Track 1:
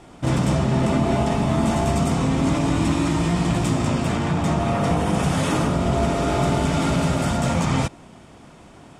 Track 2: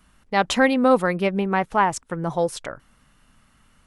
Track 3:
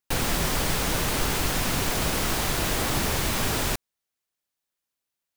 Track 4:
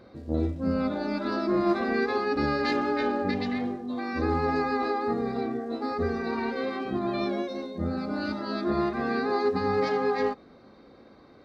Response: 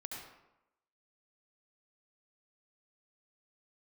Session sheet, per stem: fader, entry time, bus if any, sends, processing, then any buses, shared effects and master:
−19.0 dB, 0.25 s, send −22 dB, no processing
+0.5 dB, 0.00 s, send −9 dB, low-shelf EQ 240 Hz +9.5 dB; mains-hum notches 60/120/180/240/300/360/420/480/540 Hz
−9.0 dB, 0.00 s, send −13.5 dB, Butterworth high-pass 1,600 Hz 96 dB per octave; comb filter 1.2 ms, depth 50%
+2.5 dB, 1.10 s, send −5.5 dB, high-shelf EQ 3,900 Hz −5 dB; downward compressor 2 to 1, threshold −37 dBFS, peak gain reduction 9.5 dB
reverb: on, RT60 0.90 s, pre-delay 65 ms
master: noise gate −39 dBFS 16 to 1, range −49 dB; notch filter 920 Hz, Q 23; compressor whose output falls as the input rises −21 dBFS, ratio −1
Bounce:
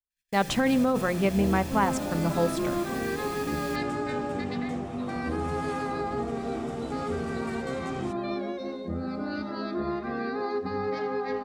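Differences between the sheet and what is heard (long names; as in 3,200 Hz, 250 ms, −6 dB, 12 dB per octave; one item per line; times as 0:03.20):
stem 2 +0.5 dB → −6.5 dB
stem 3 −9.0 dB → −17.0 dB
reverb return −9.0 dB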